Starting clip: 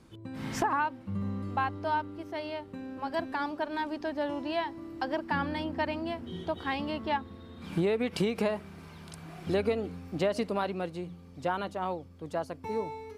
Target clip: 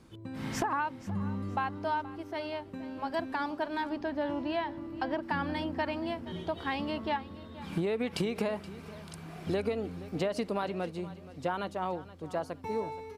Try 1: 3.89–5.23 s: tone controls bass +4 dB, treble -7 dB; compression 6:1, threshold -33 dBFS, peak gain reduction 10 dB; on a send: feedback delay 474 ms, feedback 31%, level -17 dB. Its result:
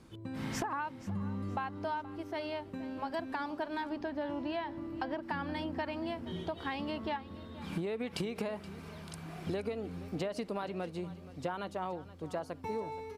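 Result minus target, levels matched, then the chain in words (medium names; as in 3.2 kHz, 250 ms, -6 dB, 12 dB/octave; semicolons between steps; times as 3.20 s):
compression: peak gain reduction +5.5 dB
3.89–5.23 s: tone controls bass +4 dB, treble -7 dB; compression 6:1, threshold -26.5 dBFS, peak gain reduction 4.5 dB; on a send: feedback delay 474 ms, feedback 31%, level -17 dB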